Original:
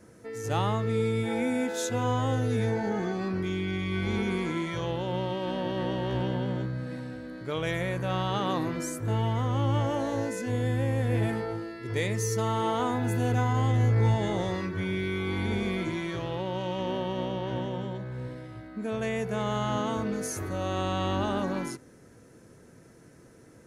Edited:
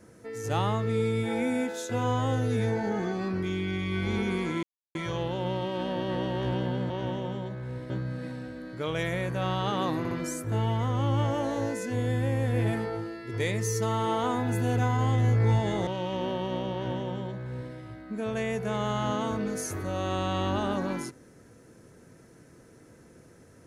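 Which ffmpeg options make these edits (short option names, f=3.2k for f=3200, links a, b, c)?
-filter_complex "[0:a]asplit=8[a][b][c][d][e][f][g][h];[a]atrim=end=1.89,asetpts=PTS-STARTPTS,afade=t=out:st=1.6:d=0.29:silence=0.398107[i];[b]atrim=start=1.89:end=4.63,asetpts=PTS-STARTPTS,afade=t=in:d=0.004:c=hsin:silence=0.398107,afade=t=out:st=2.736:d=0.004:c=hsin,apad=pad_dur=0.32[j];[c]atrim=start=4.63:end=6.582,asetpts=PTS-STARTPTS,afade=t=in:d=0.004:c=hsin[k];[d]atrim=start=17.388:end=18.392[l];[e]atrim=start=6.578:end=8.732[m];[f]atrim=start=8.668:end=8.732[n];[g]atrim=start=8.668:end=14.432[o];[h]atrim=start=16.528[p];[i][j][k]concat=n=3:v=0:a=1[q];[q][l]acrossfade=d=0.004:c1=hsin:c2=hsin[r];[r][m]acrossfade=d=0.004:c1=hsin:c2=hsin[s];[s][n]acrossfade=d=0.004:c1=hsin:c2=hsin[t];[t][o]acrossfade=d=0.004:c1=hsin:c2=hsin[u];[u][p]acrossfade=d=0.004:c1=hsin:c2=hsin"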